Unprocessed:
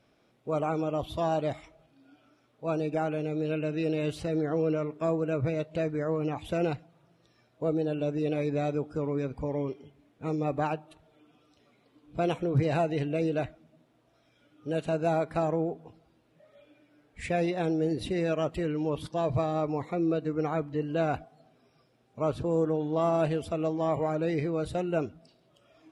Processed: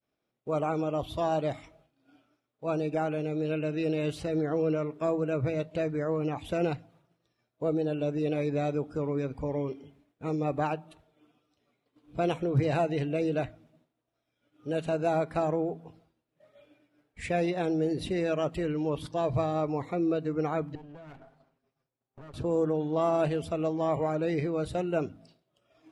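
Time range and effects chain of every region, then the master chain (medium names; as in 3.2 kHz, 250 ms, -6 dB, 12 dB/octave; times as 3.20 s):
20.75–22.34 s: comb filter that takes the minimum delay 7.4 ms + treble shelf 3.3 kHz -8.5 dB + compression 16:1, threshold -43 dBFS
whole clip: de-hum 54.81 Hz, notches 5; expander -56 dBFS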